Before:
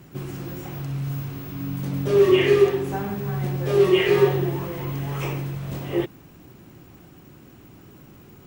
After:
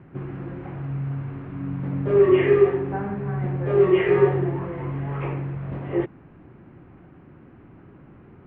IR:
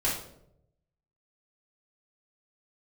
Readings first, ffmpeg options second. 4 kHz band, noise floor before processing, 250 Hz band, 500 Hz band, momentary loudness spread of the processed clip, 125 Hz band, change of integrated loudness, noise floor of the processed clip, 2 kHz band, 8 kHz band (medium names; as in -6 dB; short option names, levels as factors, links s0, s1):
under -10 dB, -49 dBFS, 0.0 dB, 0.0 dB, 17 LU, 0.0 dB, 0.0 dB, -49 dBFS, -3.0 dB, no reading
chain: -af "lowpass=f=2100:w=0.5412,lowpass=f=2100:w=1.3066"